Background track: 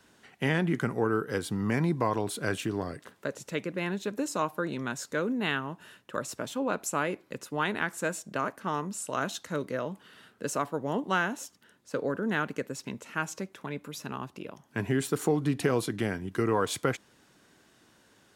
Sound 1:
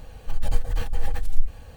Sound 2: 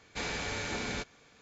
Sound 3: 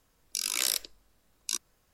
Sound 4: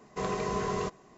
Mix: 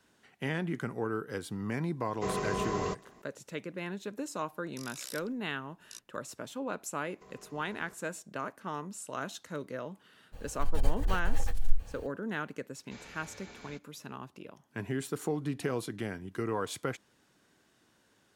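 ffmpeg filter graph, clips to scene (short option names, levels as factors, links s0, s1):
-filter_complex "[4:a]asplit=2[s0][s1];[0:a]volume=0.473[s2];[s1]acompressor=threshold=0.0112:ratio=6:attack=3.2:release=140:knee=1:detection=peak[s3];[s0]atrim=end=1.17,asetpts=PTS-STARTPTS,volume=0.841,afade=t=in:d=0.004:c=hsin,afade=t=out:st=1.166:d=0.004:c=hsin,adelay=2050[s4];[3:a]atrim=end=1.93,asetpts=PTS-STARTPTS,volume=0.15,afade=t=in:d=0.004:c=hsin,afade=t=out:st=1.926:d=0.004:c=hsin,adelay=4420[s5];[s3]atrim=end=1.17,asetpts=PTS-STARTPTS,volume=0.211,afade=t=in:d=0.004:c=hsin,afade=t=out:st=1.166:d=0.004:c=hsin,adelay=7050[s6];[1:a]atrim=end=1.76,asetpts=PTS-STARTPTS,volume=0.562,afade=t=in:d=0.02,afade=t=out:st=1.74:d=0.02,adelay=10320[s7];[2:a]atrim=end=1.41,asetpts=PTS-STARTPTS,volume=0.168,afade=t=in:d=0.004:c=hsin,afade=t=out:st=1.406:d=0.004:c=hsin,adelay=12750[s8];[s2][s4][s5][s6][s7][s8]amix=inputs=6:normalize=0"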